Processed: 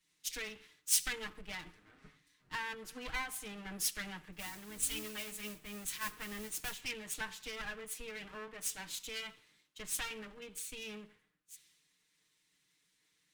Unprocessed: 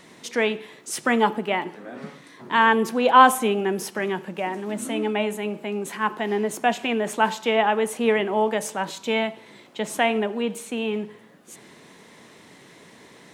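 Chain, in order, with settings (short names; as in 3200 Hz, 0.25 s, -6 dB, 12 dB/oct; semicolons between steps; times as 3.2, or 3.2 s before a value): minimum comb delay 6.5 ms; compressor 6:1, threshold -27 dBFS, peak gain reduction 16 dB; low shelf 370 Hz -10 dB; 4.32–6.81 modulation noise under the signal 12 dB; passive tone stack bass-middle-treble 6-0-2; three-band expander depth 100%; gain +11.5 dB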